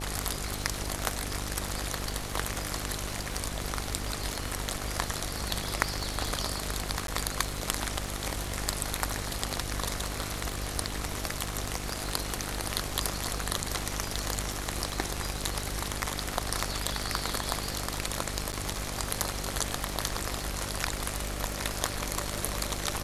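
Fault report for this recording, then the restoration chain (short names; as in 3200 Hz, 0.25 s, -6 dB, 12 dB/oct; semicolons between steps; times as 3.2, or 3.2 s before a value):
buzz 50 Hz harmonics 17 -38 dBFS
crackle 53/s -38 dBFS
7.07–7.08 gap 12 ms
18.52–18.53 gap 9.1 ms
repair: de-click; de-hum 50 Hz, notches 17; interpolate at 7.07, 12 ms; interpolate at 18.52, 9.1 ms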